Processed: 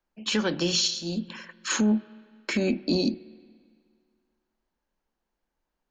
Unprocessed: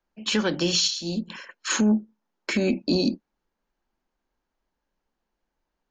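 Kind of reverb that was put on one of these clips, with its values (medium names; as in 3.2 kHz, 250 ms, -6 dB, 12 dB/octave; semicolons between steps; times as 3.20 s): spring tank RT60 2 s, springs 46/54 ms, chirp 55 ms, DRR 19.5 dB; trim -2 dB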